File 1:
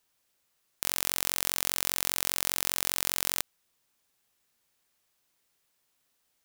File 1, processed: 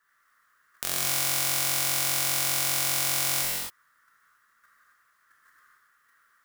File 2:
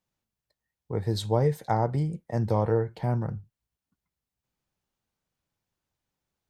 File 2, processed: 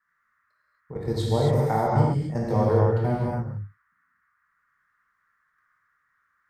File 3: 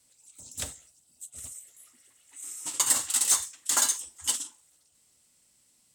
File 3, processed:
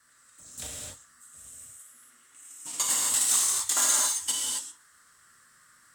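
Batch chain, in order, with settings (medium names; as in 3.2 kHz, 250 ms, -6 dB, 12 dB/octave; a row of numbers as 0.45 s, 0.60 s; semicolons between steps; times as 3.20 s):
band noise 1.1–1.9 kHz -67 dBFS; level held to a coarse grid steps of 13 dB; gated-style reverb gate 300 ms flat, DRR -5 dB; normalise loudness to -24 LUFS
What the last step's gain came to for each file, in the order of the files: +5.5 dB, +1.5 dB, -0.5 dB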